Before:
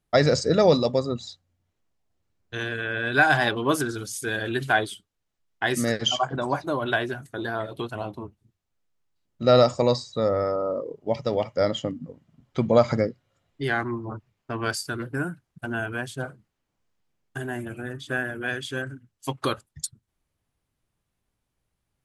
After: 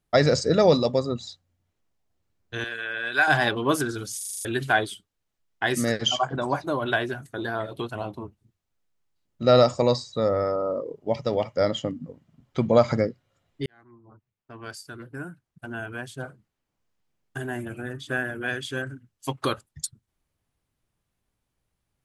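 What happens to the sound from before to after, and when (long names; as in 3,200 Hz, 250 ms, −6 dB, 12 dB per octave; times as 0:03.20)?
0:02.64–0:03.28: high-pass filter 970 Hz 6 dB per octave
0:04.17: stutter in place 0.04 s, 7 plays
0:13.66–0:17.48: fade in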